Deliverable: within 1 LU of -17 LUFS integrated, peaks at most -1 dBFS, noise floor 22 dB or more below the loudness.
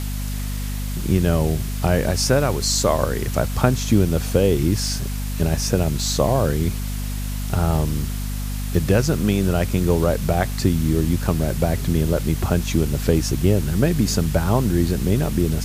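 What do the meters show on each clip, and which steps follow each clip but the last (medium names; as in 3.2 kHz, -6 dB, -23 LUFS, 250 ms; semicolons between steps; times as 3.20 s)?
hum 50 Hz; highest harmonic 250 Hz; hum level -23 dBFS; noise floor -26 dBFS; noise floor target -43 dBFS; loudness -21.0 LUFS; peak level -2.0 dBFS; loudness target -17.0 LUFS
-> hum notches 50/100/150/200/250 Hz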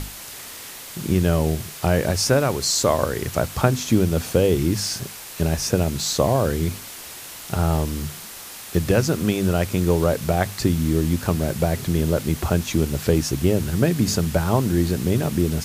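hum not found; noise floor -38 dBFS; noise floor target -44 dBFS
-> noise reduction 6 dB, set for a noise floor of -38 dBFS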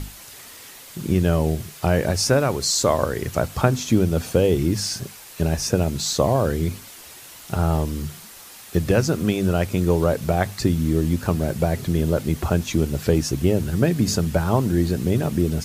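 noise floor -42 dBFS; noise floor target -44 dBFS
-> noise reduction 6 dB, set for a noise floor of -42 dBFS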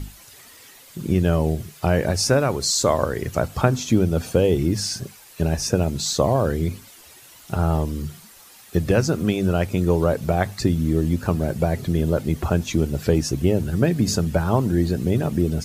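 noise floor -47 dBFS; loudness -22.0 LUFS; peak level -4.0 dBFS; loudness target -17.0 LUFS
-> trim +5 dB; peak limiter -1 dBFS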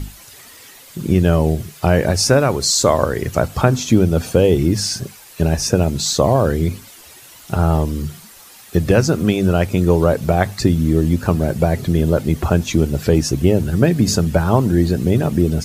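loudness -17.0 LUFS; peak level -1.0 dBFS; noise floor -42 dBFS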